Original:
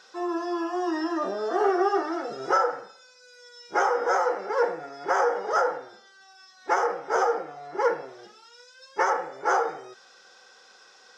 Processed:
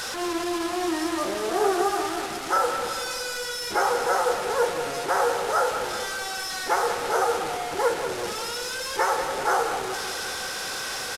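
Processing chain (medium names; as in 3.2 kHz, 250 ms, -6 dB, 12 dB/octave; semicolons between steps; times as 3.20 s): one-bit delta coder 64 kbps, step -26 dBFS; 1.81–2.56 s: peaking EQ 460 Hz -14 dB 0.46 oct; feedback delay 190 ms, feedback 58%, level -8.5 dB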